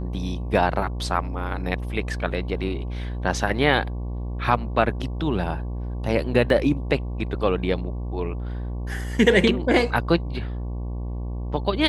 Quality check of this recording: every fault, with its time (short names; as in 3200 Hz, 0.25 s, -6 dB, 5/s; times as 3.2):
buzz 60 Hz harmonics 19 -29 dBFS
6.5 gap 2 ms